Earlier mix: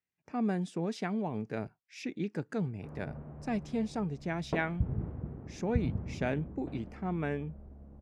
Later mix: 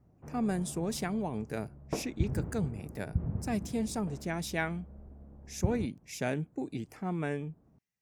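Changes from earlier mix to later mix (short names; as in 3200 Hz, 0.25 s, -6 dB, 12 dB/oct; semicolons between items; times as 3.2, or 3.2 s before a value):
speech: remove LPF 3700 Hz 12 dB/oct; background: entry -2.60 s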